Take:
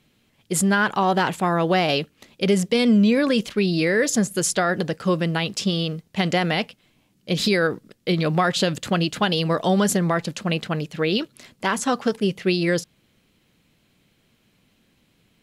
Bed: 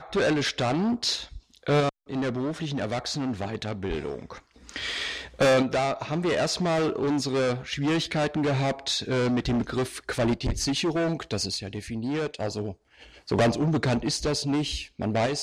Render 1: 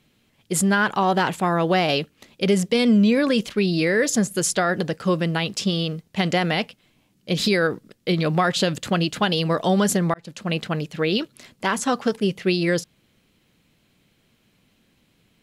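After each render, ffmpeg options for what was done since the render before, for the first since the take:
-filter_complex "[0:a]asplit=2[a][b];[a]atrim=end=10.14,asetpts=PTS-STARTPTS,afade=t=out:st=10.136:d=0.004:c=hsin[c];[b]atrim=start=10.14,asetpts=PTS-STARTPTS,afade=t=in:d=0.43[d];[c][d]concat=n=2:v=0:a=1"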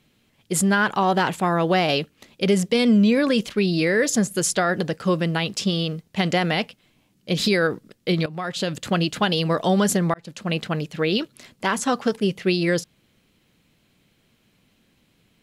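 -filter_complex "[0:a]asplit=2[a][b];[a]atrim=end=8.26,asetpts=PTS-STARTPTS,afade=t=out:st=8.256:d=0.004:c=hsin:silence=0.133352[c];[b]atrim=start=8.26,asetpts=PTS-STARTPTS,afade=t=in:d=0.69:silence=0.133352[d];[c][d]concat=n=2:v=0:a=1"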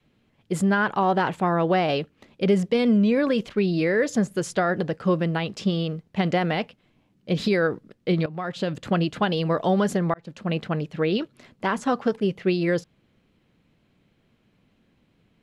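-af "lowpass=f=1.5k:p=1,adynamicequalizer=threshold=0.0282:dfrequency=210:dqfactor=1.2:tfrequency=210:tqfactor=1.2:attack=5:release=100:ratio=0.375:range=2:mode=cutabove:tftype=bell"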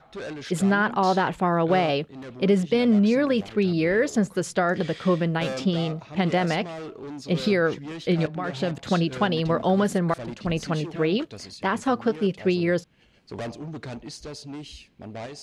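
-filter_complex "[1:a]volume=-11.5dB[a];[0:a][a]amix=inputs=2:normalize=0"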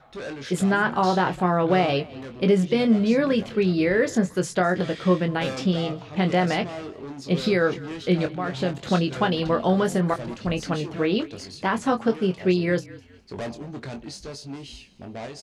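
-filter_complex "[0:a]asplit=2[a][b];[b]adelay=22,volume=-7dB[c];[a][c]amix=inputs=2:normalize=0,asplit=4[d][e][f][g];[e]adelay=205,afreqshift=-40,volume=-20dB[h];[f]adelay=410,afreqshift=-80,volume=-29.6dB[i];[g]adelay=615,afreqshift=-120,volume=-39.3dB[j];[d][h][i][j]amix=inputs=4:normalize=0"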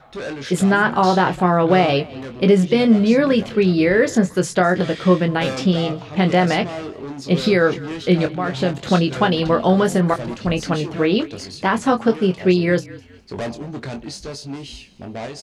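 -af "volume=5.5dB"

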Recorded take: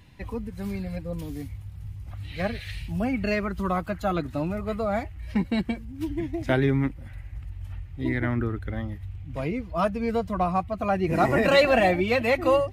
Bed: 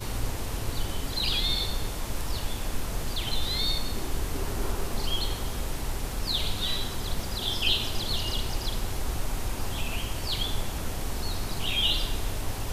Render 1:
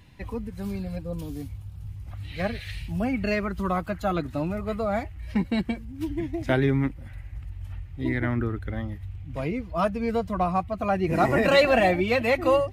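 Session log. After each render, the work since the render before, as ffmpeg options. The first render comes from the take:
-filter_complex "[0:a]asettb=1/sr,asplit=3[a][b][c];[a]atrim=end=0.604[d];[b]atrim=start=0.6:end=1.89,asetpts=PTS-STARTPTS,afade=t=in:d=0.004:c=qsin,afade=t=out:st=1.286:d=0.004:c=qsin,equalizer=f=2k:w=3.7:g=-8[e];[c]atrim=start=1.886[f];[d][e]acrossfade=d=0.004:c1=hsin:c2=qsin[g];[g][f]acrossfade=d=0.004:c1=qsin:c2=hsin"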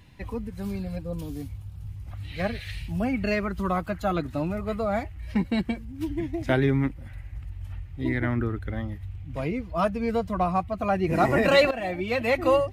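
-filter_complex "[0:a]asplit=2[a][b];[a]atrim=end=11.71,asetpts=PTS-STARTPTS,afade=t=out:st=11.706:d=0.004:c=hsin:silence=0.149624[c];[b]atrim=start=11.71,asetpts=PTS-STARTPTS,afade=t=in:d=0.68:silence=0.149624[d];[c][d]concat=n=2:v=0:a=1"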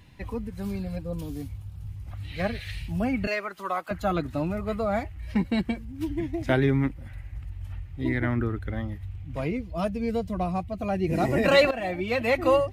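-filter_complex "[0:a]asettb=1/sr,asplit=3[a][b][c];[a]atrim=end=3.274[d];[b]atrim=start=3.27:end=3.91,asetpts=PTS-STARTPTS,afade=t=in:d=0.004:c=qsin,afade=t=out:st=0.636:d=0.004:c=qsin,highpass=540[e];[c]atrim=start=3.906[f];[d][e]acrossfade=d=0.004:c1=hsin:c2=qsin[g];[g][f]acrossfade=d=0.004:c1=qsin:c2=hsin,asettb=1/sr,asplit=3[h][i][j];[h]atrim=end=9.574[k];[i]atrim=start=9.57:end=11.44,asetpts=PTS-STARTPTS,afade=t=in:d=0.004:c=qsin,afade=t=out:st=1.866:d=0.004:c=qsin,equalizer=f=1.2k:w=0.99:g=-10[l];[j]atrim=start=11.436[m];[k][l]acrossfade=d=0.004:c1=hsin:c2=qsin[n];[n][m]acrossfade=d=0.004:c1=qsin:c2=hsin"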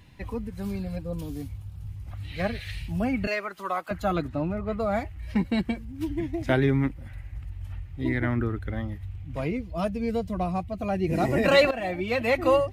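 -filter_complex "[0:a]asettb=1/sr,asplit=3[a][b][c];[a]atrim=end=4.284[d];[b]atrim=start=4.28:end=4.8,asetpts=PTS-STARTPTS,afade=t=in:d=0.004:c=qsin,afade=t=out:st=0.516:d=0.004:c=qsin,lowpass=f=2k:p=1[e];[c]atrim=start=4.796[f];[d][e]acrossfade=d=0.004:c1=hsin:c2=qsin[g];[g][f]acrossfade=d=0.004:c1=qsin:c2=hsin"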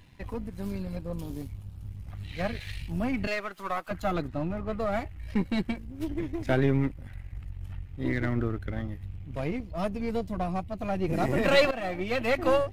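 -af "aeval=exprs='if(lt(val(0),0),0.447*val(0),val(0))':c=same"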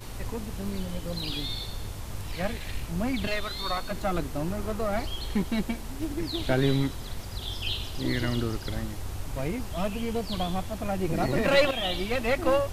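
-filter_complex "[1:a]volume=-7dB[a];[0:a][a]amix=inputs=2:normalize=0"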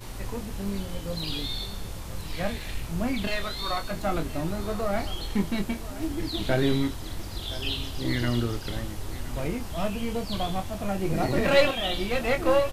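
-filter_complex "[0:a]asplit=2[a][b];[b]adelay=25,volume=-7dB[c];[a][c]amix=inputs=2:normalize=0,aecho=1:1:1020:0.158"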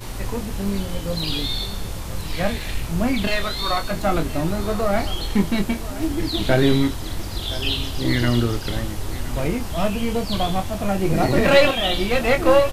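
-af "volume=7dB,alimiter=limit=-1dB:level=0:latency=1"

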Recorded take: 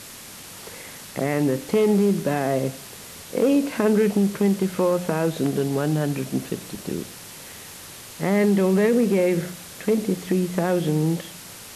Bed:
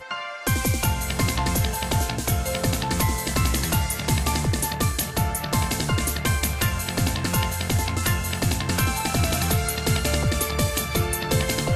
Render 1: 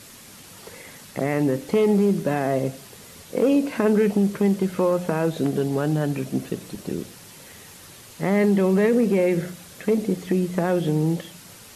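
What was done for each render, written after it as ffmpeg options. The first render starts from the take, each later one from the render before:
-af "afftdn=nr=6:nf=-41"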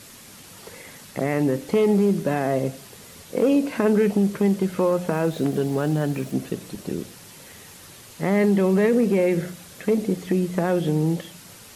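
-filter_complex "[0:a]asettb=1/sr,asplit=3[a][b][c];[a]atrim=end=5.114[d];[b]atrim=start=5.11:end=6.32,asetpts=PTS-STARTPTS,afade=t=in:d=0.004:c=qsin,afade=t=out:st=1.206:d=0.004:c=qsin,aeval=exprs='val(0)*gte(abs(val(0)),0.0075)':c=same[e];[c]atrim=start=6.316[f];[d][e]acrossfade=d=0.004:c1=hsin:c2=qsin[g];[g][f]acrossfade=d=0.004:c1=qsin:c2=hsin"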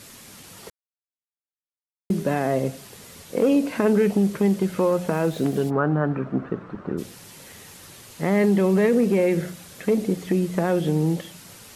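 -filter_complex "[0:a]asplit=3[a][b][c];[a]afade=t=out:st=5.69:d=0.02[d];[b]lowpass=f=1.3k:t=q:w=3.5,afade=t=in:st=5.69:d=0.02,afade=t=out:st=6.97:d=0.02[e];[c]afade=t=in:st=6.97:d=0.02[f];[d][e][f]amix=inputs=3:normalize=0,asplit=3[g][h][i];[g]atrim=end=0.7,asetpts=PTS-STARTPTS,afade=t=out:st=0.696:d=0.004:c=hsin[j];[h]atrim=start=0.7:end=2.1,asetpts=PTS-STARTPTS,volume=0[k];[i]atrim=start=2.1,asetpts=PTS-STARTPTS,afade=t=in:d=0.004:c=hsin[l];[j][k][l]concat=n=3:v=0:a=1"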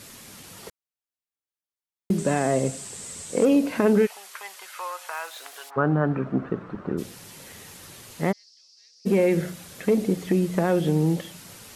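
-filter_complex "[0:a]asettb=1/sr,asplit=3[a][b][c];[a]atrim=end=2.184[d];[b]atrim=start=2.18:end=3.45,asetpts=PTS-STARTPTS,afade=t=in:d=0.004:c=qsin,afade=t=out:st=1.266:d=0.004:c=qsin,lowpass=f=8k:t=q:w=6.6[e];[c]atrim=start=3.446[f];[d][e]acrossfade=d=0.004:c1=hsin:c2=qsin[g];[g][f]acrossfade=d=0.004:c1=qsin:c2=hsin,asplit=3[h][i][j];[h]afade=t=out:st=4.05:d=0.02[k];[i]highpass=f=930:w=0.5412,highpass=f=930:w=1.3066,afade=t=in:st=4.05:d=0.02,afade=t=out:st=5.76:d=0.02[l];[j]afade=t=in:st=5.76:d=0.02[m];[k][l][m]amix=inputs=3:normalize=0,asplit=3[n][o][p];[n]afade=t=out:st=8.31:d=0.02[q];[o]asuperpass=centerf=5100:order=4:qfactor=4.2,afade=t=in:st=8.31:d=0.02,afade=t=out:st=9.05:d=0.02[r];[p]afade=t=in:st=9.05:d=0.02[s];[q][r][s]amix=inputs=3:normalize=0"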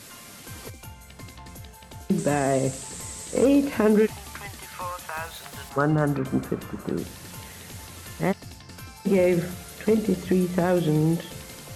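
-filter_complex "[1:a]volume=-19.5dB[a];[0:a][a]amix=inputs=2:normalize=0"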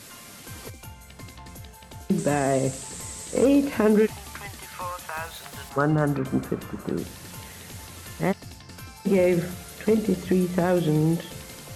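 -af anull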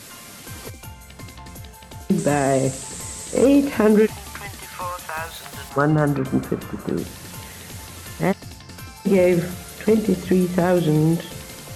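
-af "volume=4dB"

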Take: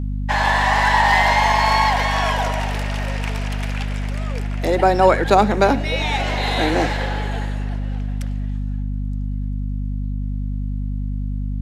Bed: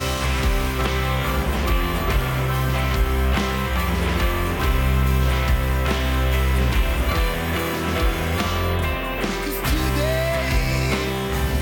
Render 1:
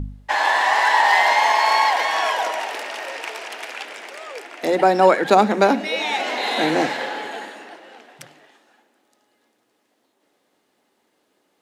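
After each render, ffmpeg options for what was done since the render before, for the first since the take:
-af "bandreject=f=50:t=h:w=4,bandreject=f=100:t=h:w=4,bandreject=f=150:t=h:w=4,bandreject=f=200:t=h:w=4,bandreject=f=250:t=h:w=4"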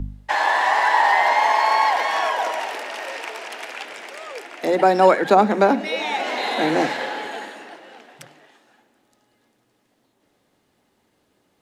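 -filter_complex "[0:a]acrossover=split=130|1900[a][b][c];[a]acompressor=mode=upward:threshold=-59dB:ratio=2.5[d];[c]alimiter=limit=-22dB:level=0:latency=1:release=342[e];[d][b][e]amix=inputs=3:normalize=0"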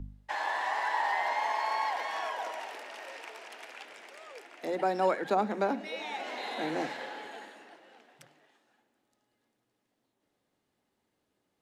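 -af "volume=-13.5dB"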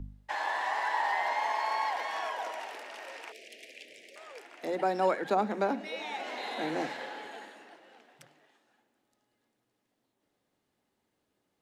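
-filter_complex "[0:a]asettb=1/sr,asplit=3[a][b][c];[a]atrim=end=3.324[d];[b]atrim=start=3.32:end=4.16,asetpts=PTS-STARTPTS,afade=t=in:d=0.004:c=qsin,afade=t=out:st=0.836:d=0.004:c=qsin,asuperstop=centerf=1100:order=8:qfactor=0.78[e];[c]atrim=start=4.156[f];[d][e]acrossfade=d=0.004:c1=hsin:c2=qsin[g];[g][f]acrossfade=d=0.004:c1=qsin:c2=hsin"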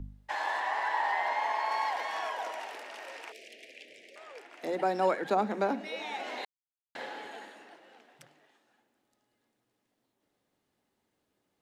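-filter_complex "[0:a]asettb=1/sr,asplit=3[a][b][c];[a]atrim=end=0.604[d];[b]atrim=start=0.6:end=1.71,asetpts=PTS-STARTPTS,afade=t=in:d=0.004:c=qsin,afade=t=out:st=1.106:d=0.004:c=qsin,bass=f=250:g=-1,treble=f=4k:g=-5[e];[c]atrim=start=1.706[f];[d][e]acrossfade=d=0.004:c1=hsin:c2=qsin[g];[g][f]acrossfade=d=0.004:c1=qsin:c2=hsin,asettb=1/sr,asplit=3[h][i][j];[h]atrim=end=3.514[k];[i]atrim=start=3.51:end=4.52,asetpts=PTS-STARTPTS,afade=t=in:d=0.004:c=qsin,afade=t=out:st=1.006:d=0.004:c=qsin,highshelf=f=5.7k:g=-7[l];[j]atrim=start=4.516[m];[k][l]acrossfade=d=0.004:c1=hsin:c2=qsin[n];[n][m]acrossfade=d=0.004:c1=qsin:c2=hsin,asplit=3[o][p][q];[o]atrim=end=6.45,asetpts=PTS-STARTPTS,afade=t=out:st=6.446:d=0.004:c=hsin[r];[p]atrim=start=6.45:end=6.95,asetpts=PTS-STARTPTS,volume=0[s];[q]atrim=start=6.95,asetpts=PTS-STARTPTS,afade=t=in:d=0.004:c=hsin[t];[r][s][t]concat=n=3:v=0:a=1"

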